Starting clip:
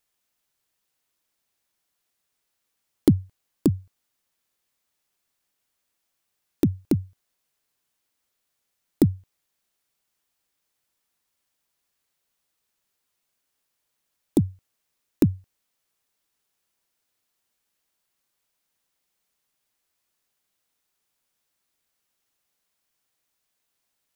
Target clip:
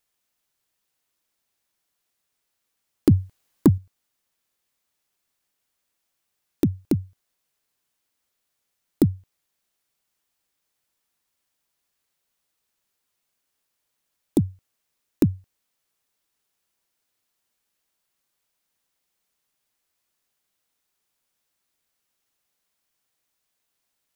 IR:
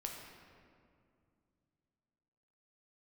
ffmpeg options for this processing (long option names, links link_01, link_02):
-filter_complex "[0:a]asettb=1/sr,asplit=3[link_01][link_02][link_03];[link_01]atrim=end=3.114[link_04];[link_02]atrim=start=3.11:end=3.78,asetpts=PTS-STARTPTS,afade=type=in:duration=0.004:curve=qsin,afade=type=out:start_time=0.666:duration=0.004:curve=qsin,acontrast=45[link_05];[link_03]atrim=start=3.776[link_06];[link_04][link_05]acrossfade=duration=0.004:curve1=hsin:curve2=qsin[link_07];[link_07][link_06]acrossfade=duration=0.004:curve1=qsin:curve2=hsin,asoftclip=type=hard:threshold=-7dB"